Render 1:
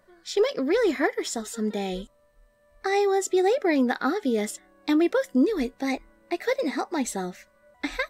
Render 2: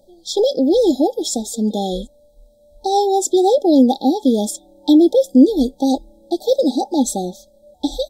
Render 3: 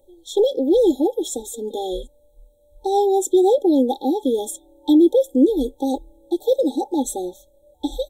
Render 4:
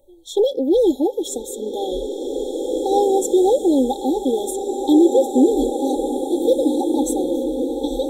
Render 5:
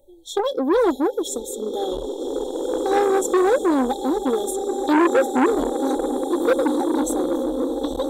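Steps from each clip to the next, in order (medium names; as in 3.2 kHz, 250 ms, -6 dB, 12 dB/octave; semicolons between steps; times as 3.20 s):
FFT band-reject 890–3200 Hz; comb 3.6 ms, depth 44%; trim +8.5 dB
static phaser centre 1 kHz, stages 8
swelling reverb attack 2220 ms, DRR 4 dB
transformer saturation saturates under 1 kHz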